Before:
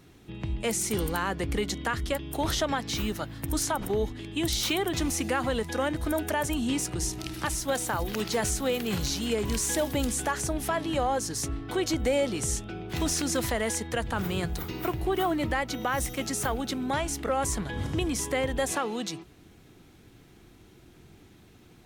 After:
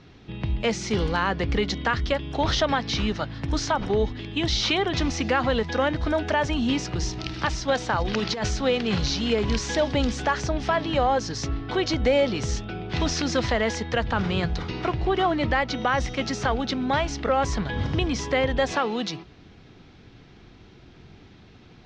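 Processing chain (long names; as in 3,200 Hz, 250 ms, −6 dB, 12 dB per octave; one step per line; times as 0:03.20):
Butterworth low-pass 5,500 Hz 36 dB per octave
parametric band 330 Hz −4.5 dB 0.37 octaves
0:08.01–0:08.48: compressor whose output falls as the input rises −30 dBFS, ratio −0.5
level +5.5 dB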